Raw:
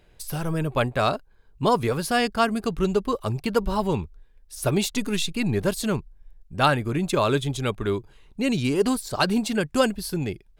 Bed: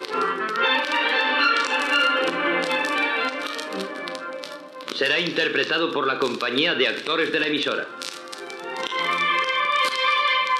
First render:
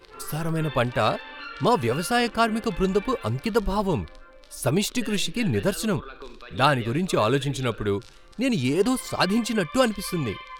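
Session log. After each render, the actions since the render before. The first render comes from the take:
mix in bed −19 dB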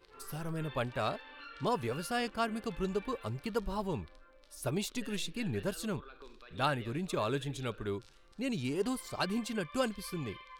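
level −11.5 dB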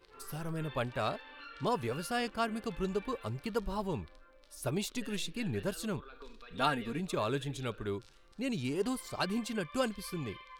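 0:06.12–0:07.00: comb filter 4.3 ms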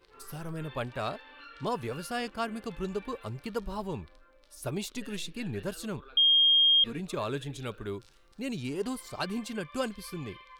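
0:06.17–0:06.84: beep over 3,230 Hz −18.5 dBFS
0:07.60–0:08.55: high-shelf EQ 12,000 Hz +7.5 dB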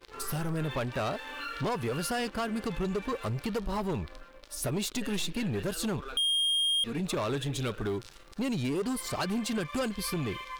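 downward compressor 2.5 to 1, threshold −38 dBFS, peak gain reduction 11 dB
leveller curve on the samples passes 3

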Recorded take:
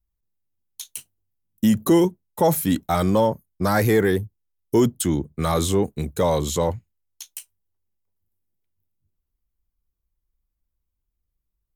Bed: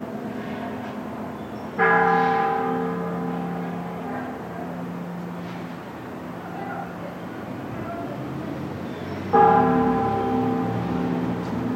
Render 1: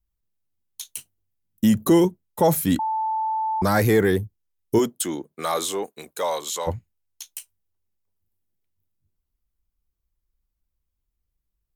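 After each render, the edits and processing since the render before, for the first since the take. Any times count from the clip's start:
0:02.79–0:03.62: beep over 879 Hz −21.5 dBFS
0:04.78–0:06.66: high-pass filter 330 Hz → 830 Hz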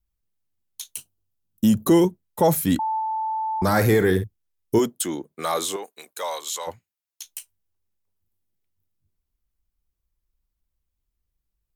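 0:00.97–0:01.85: parametric band 2,000 Hz −12.5 dB 0.32 octaves
0:02.94–0:04.24: flutter between parallel walls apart 9.1 metres, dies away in 0.28 s
0:05.76–0:07.25: high-pass filter 920 Hz 6 dB per octave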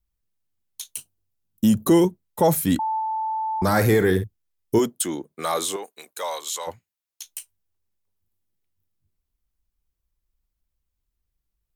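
dynamic equaliser 8,900 Hz, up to +4 dB, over −49 dBFS, Q 7.5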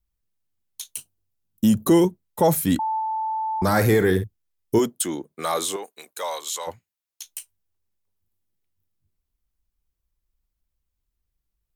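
no processing that can be heard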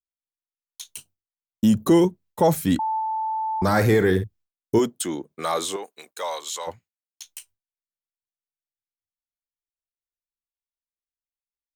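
downward expander −46 dBFS
parametric band 12,000 Hz −8.5 dB 0.78 octaves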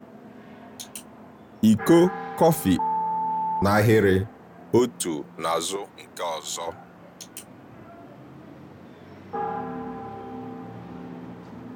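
mix in bed −14 dB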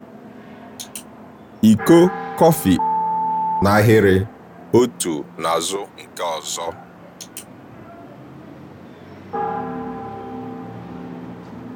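level +5.5 dB

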